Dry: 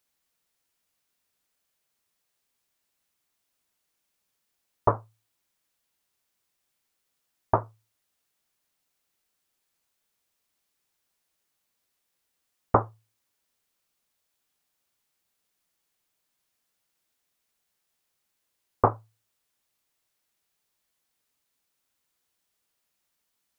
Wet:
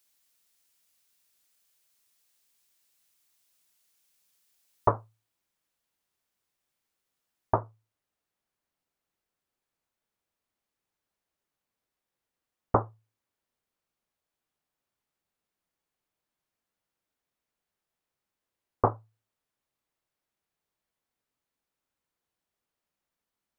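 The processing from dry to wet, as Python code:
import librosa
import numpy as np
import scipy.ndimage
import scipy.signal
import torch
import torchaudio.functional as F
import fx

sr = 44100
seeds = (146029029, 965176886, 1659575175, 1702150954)

y = fx.high_shelf(x, sr, hz=2300.0, db=fx.steps((0.0, 10.0), (4.88, -4.0), (7.54, -11.0)))
y = y * librosa.db_to_amplitude(-2.0)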